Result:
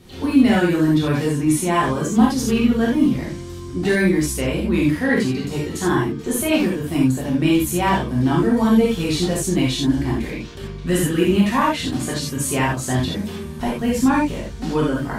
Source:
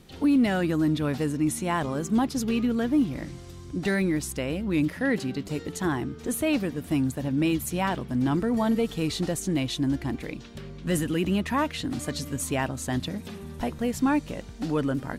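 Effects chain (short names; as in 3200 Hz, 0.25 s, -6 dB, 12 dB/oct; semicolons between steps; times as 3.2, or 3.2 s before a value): non-linear reverb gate 0.11 s flat, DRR -5.5 dB; gain +1.5 dB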